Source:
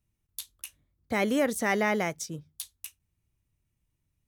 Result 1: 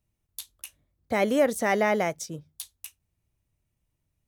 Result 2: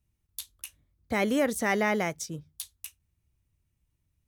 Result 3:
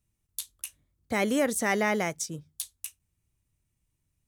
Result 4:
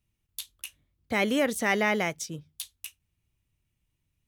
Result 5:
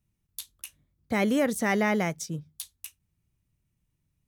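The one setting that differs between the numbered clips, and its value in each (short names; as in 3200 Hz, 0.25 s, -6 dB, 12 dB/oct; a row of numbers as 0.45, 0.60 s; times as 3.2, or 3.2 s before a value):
bell, frequency: 620, 65, 8400, 2900, 170 Hz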